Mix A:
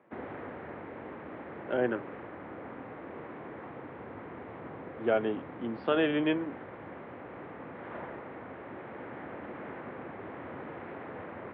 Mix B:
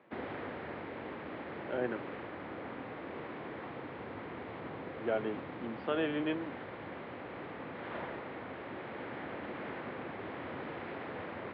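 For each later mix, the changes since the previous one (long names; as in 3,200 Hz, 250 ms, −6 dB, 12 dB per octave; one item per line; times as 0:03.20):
speech −6.0 dB
background: remove low-pass filter 2,000 Hz 12 dB per octave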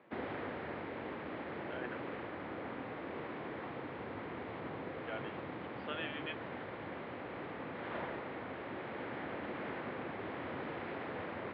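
speech: add resonant band-pass 2,800 Hz, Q 0.89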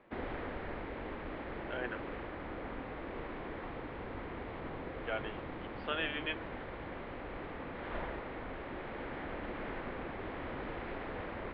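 speech +6.0 dB
master: remove high-pass filter 98 Hz 24 dB per octave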